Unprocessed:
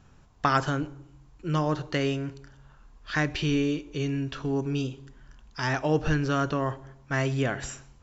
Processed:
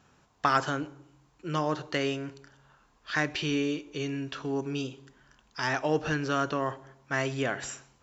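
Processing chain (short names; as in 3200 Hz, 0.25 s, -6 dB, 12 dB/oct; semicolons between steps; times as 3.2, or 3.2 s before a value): HPF 320 Hz 6 dB/oct; in parallel at -11 dB: overloaded stage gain 18.5 dB; on the sum: gain -2 dB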